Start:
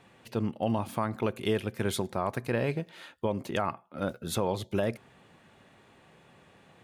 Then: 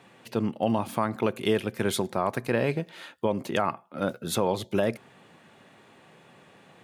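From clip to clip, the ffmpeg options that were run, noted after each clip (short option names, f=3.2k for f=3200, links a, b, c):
-af "highpass=130,volume=4dB"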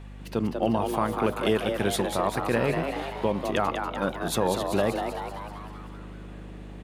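-filter_complex "[0:a]aeval=exprs='val(0)+0.00891*(sin(2*PI*50*n/s)+sin(2*PI*2*50*n/s)/2+sin(2*PI*3*50*n/s)/3+sin(2*PI*4*50*n/s)/4+sin(2*PI*5*50*n/s)/5)':c=same,asplit=9[a][b][c][d][e][f][g][h][i];[b]adelay=193,afreqshift=130,volume=-6dB[j];[c]adelay=386,afreqshift=260,volume=-10.7dB[k];[d]adelay=579,afreqshift=390,volume=-15.5dB[l];[e]adelay=772,afreqshift=520,volume=-20.2dB[m];[f]adelay=965,afreqshift=650,volume=-24.9dB[n];[g]adelay=1158,afreqshift=780,volume=-29.7dB[o];[h]adelay=1351,afreqshift=910,volume=-34.4dB[p];[i]adelay=1544,afreqshift=1040,volume=-39.1dB[q];[a][j][k][l][m][n][o][p][q]amix=inputs=9:normalize=0"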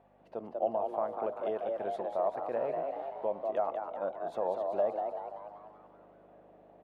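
-af "bandpass=f=650:t=q:w=4.1:csg=0"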